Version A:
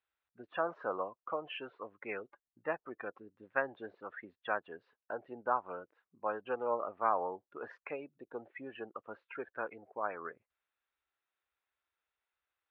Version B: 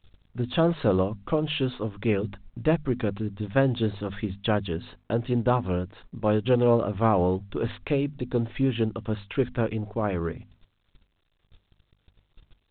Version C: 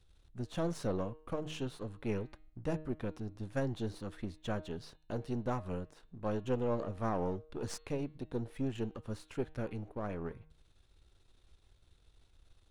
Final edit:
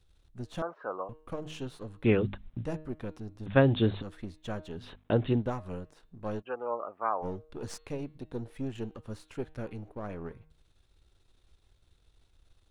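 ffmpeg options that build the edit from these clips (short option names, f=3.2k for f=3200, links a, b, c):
-filter_complex "[0:a]asplit=2[a][b];[1:a]asplit=3[c][d][e];[2:a]asplit=6[f][g][h][i][j][k];[f]atrim=end=0.622[l];[a]atrim=start=0.618:end=1.092[m];[g]atrim=start=1.088:end=2.042[n];[c]atrim=start=2.038:end=2.652[o];[h]atrim=start=2.648:end=3.462[p];[d]atrim=start=3.458:end=4.022[q];[i]atrim=start=4.018:end=4.98[r];[e]atrim=start=4.74:end=5.52[s];[j]atrim=start=5.28:end=6.43[t];[b]atrim=start=6.39:end=7.25[u];[k]atrim=start=7.21[v];[l][m]acrossfade=d=0.004:c1=hsin:c2=hsin[w];[w][n]acrossfade=d=0.004:c1=hsin:c2=hsin[x];[x][o]acrossfade=d=0.004:c1=hsin:c2=hsin[y];[y][p]acrossfade=d=0.004:c1=hsin:c2=hsin[z];[z][q]acrossfade=d=0.004:c1=hsin:c2=hsin[aa];[aa][r]acrossfade=d=0.004:c1=hsin:c2=hsin[ab];[ab][s]acrossfade=d=0.24:c1=tri:c2=tri[ac];[ac][t]acrossfade=d=0.24:c1=tri:c2=tri[ad];[ad][u]acrossfade=d=0.04:c1=tri:c2=tri[ae];[ae][v]acrossfade=d=0.04:c1=tri:c2=tri"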